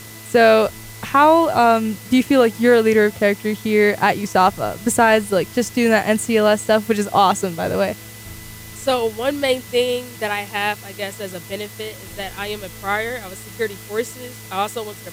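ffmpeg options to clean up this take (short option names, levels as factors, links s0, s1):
-af "adeclick=t=4,bandreject=f=108.9:t=h:w=4,bandreject=f=217.8:t=h:w=4,bandreject=f=326.7:t=h:w=4,bandreject=f=435.6:t=h:w=4,bandreject=f=2000:w=30,afwtdn=0.011"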